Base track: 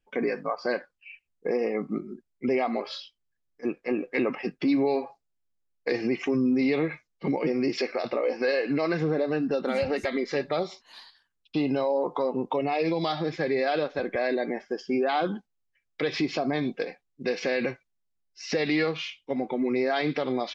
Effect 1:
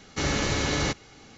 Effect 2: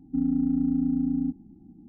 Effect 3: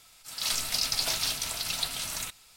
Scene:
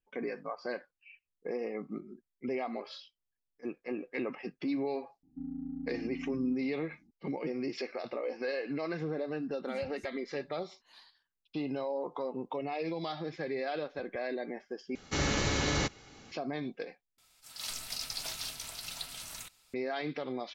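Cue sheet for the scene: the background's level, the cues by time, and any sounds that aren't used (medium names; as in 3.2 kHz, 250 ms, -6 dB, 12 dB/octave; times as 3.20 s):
base track -9.5 dB
5.23 s: add 2 -15.5 dB
14.95 s: replace with 1 -4 dB
17.18 s: replace with 3 -10 dB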